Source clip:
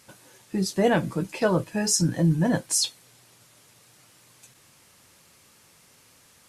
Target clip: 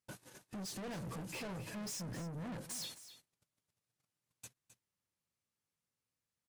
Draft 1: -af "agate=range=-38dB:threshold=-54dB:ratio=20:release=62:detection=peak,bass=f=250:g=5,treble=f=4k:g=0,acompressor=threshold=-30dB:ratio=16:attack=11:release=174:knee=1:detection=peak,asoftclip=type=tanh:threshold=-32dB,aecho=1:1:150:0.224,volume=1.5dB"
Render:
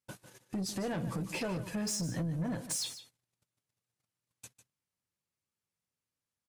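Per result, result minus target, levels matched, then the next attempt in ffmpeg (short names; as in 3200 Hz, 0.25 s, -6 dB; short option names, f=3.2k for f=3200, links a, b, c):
echo 0.112 s early; soft clip: distortion -7 dB
-af "agate=range=-38dB:threshold=-54dB:ratio=20:release=62:detection=peak,bass=f=250:g=5,treble=f=4k:g=0,acompressor=threshold=-30dB:ratio=16:attack=11:release=174:knee=1:detection=peak,asoftclip=type=tanh:threshold=-32dB,aecho=1:1:262:0.224,volume=1.5dB"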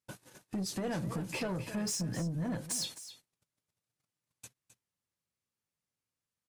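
soft clip: distortion -7 dB
-af "agate=range=-38dB:threshold=-54dB:ratio=20:release=62:detection=peak,bass=f=250:g=5,treble=f=4k:g=0,acompressor=threshold=-30dB:ratio=16:attack=11:release=174:knee=1:detection=peak,asoftclip=type=tanh:threshold=-43.5dB,aecho=1:1:262:0.224,volume=1.5dB"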